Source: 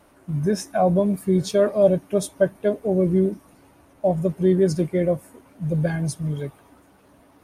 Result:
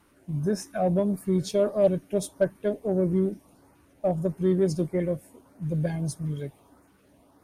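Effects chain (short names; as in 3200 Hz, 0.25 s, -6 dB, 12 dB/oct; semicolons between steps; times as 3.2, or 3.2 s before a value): LFO notch saw up 1.6 Hz 550–3700 Hz; added harmonics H 8 -35 dB, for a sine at -6 dBFS; gain -4.5 dB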